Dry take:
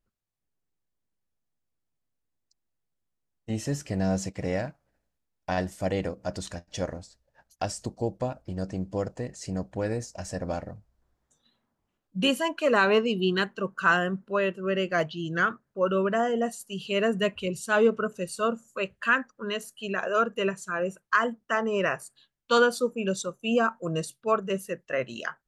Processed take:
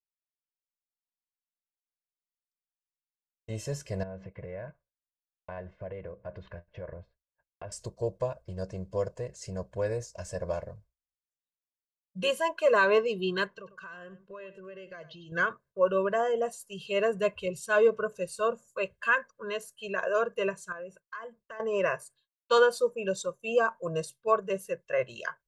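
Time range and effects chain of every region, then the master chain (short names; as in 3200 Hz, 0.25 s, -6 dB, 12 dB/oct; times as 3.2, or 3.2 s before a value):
4.03–7.72 LPF 2400 Hz 24 dB/oct + compressor 8:1, threshold -32 dBFS
13.47–15.32 LPF 6600 Hz + compressor 8:1, threshold -38 dBFS + echo 98 ms -14 dB
20.72–21.6 high shelf 6400 Hz -9.5 dB + compressor 2.5:1, threshold -41 dBFS
whole clip: expander -47 dBFS; dynamic EQ 780 Hz, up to +4 dB, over -38 dBFS, Q 1; comb 1.9 ms, depth 86%; gain -6.5 dB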